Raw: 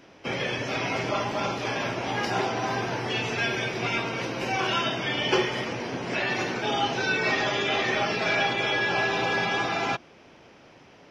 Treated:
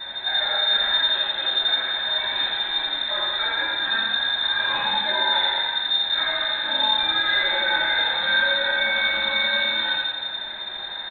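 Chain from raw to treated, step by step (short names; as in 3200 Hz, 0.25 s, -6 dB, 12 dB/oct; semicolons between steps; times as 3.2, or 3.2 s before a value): delta modulation 32 kbps, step -31.5 dBFS; vowel filter i; notches 60/120 Hz; feedback echo 85 ms, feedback 54%, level -3.5 dB; shoebox room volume 180 m³, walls furnished, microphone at 2.9 m; inverted band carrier 3900 Hz; gain +7.5 dB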